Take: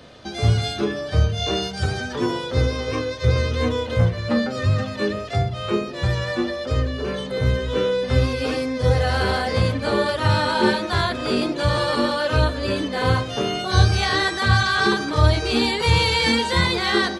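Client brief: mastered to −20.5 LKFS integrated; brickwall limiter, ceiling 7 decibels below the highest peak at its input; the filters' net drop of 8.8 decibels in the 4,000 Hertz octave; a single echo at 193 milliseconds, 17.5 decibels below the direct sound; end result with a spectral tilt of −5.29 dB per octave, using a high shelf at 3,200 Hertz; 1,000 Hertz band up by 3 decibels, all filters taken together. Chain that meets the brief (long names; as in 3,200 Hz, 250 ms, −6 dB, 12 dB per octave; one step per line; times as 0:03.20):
parametric band 1,000 Hz +4.5 dB
high-shelf EQ 3,200 Hz −5 dB
parametric band 4,000 Hz −7.5 dB
brickwall limiter −10 dBFS
single-tap delay 193 ms −17.5 dB
level +1.5 dB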